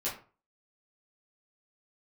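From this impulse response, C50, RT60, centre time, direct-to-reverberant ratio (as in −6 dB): 7.5 dB, 0.40 s, 31 ms, −8.5 dB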